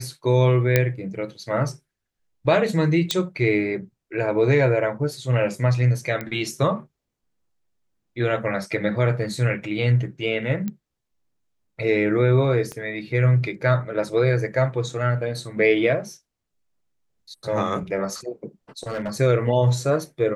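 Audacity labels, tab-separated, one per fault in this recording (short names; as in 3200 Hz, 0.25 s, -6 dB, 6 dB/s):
0.760000	0.760000	pop -3 dBFS
3.110000	3.110000	pop -7 dBFS
6.210000	6.210000	pop -15 dBFS
10.680000	10.680000	pop -16 dBFS
12.720000	12.720000	pop -19 dBFS
18.830000	19.120000	clipped -23.5 dBFS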